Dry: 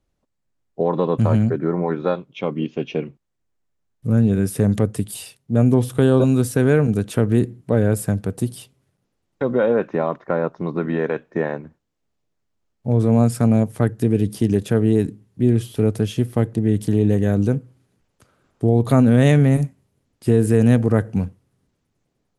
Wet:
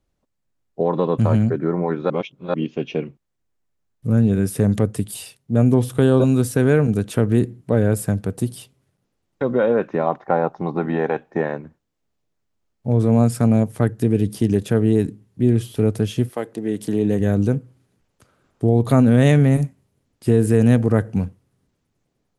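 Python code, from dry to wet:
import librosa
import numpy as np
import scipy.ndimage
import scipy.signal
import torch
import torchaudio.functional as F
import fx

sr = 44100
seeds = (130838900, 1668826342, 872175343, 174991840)

y = fx.peak_eq(x, sr, hz=790.0, db=14.5, octaves=0.26, at=(10.06, 11.41))
y = fx.highpass(y, sr, hz=fx.line((16.28, 550.0), (17.19, 130.0)), slope=12, at=(16.28, 17.19), fade=0.02)
y = fx.edit(y, sr, fx.reverse_span(start_s=2.1, length_s=0.44), tone=tone)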